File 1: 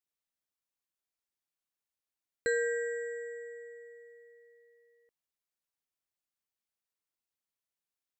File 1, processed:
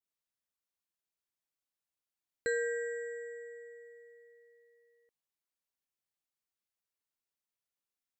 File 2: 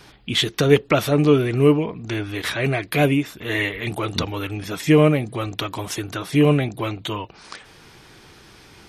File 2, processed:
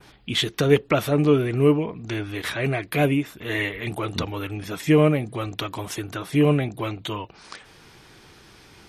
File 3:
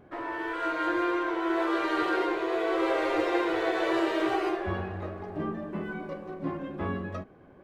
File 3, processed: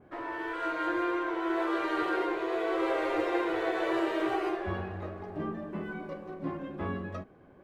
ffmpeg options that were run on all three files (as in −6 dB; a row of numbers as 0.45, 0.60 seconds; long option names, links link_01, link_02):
-af "adynamicequalizer=threshold=0.00631:dfrequency=5000:dqfactor=0.97:tfrequency=5000:tqfactor=0.97:attack=5:release=100:ratio=0.375:range=2.5:mode=cutabove:tftype=bell,volume=-2.5dB"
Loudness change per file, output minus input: −2.5, −2.5, −2.5 LU